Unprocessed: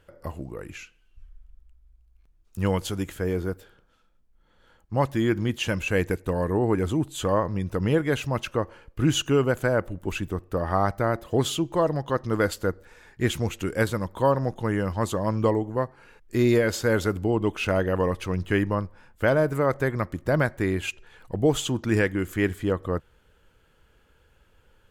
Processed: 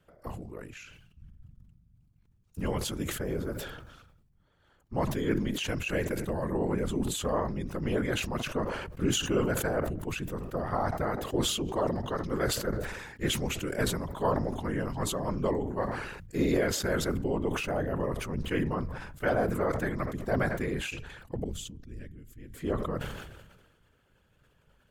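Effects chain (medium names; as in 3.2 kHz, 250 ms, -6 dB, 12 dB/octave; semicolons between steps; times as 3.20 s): 17.44–18.38 s: peaking EQ 3.6 kHz -7.5 dB 1.9 oct; whisper effect; 21.44–22.54 s: amplifier tone stack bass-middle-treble 10-0-1; decay stretcher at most 44 dB/s; trim -7 dB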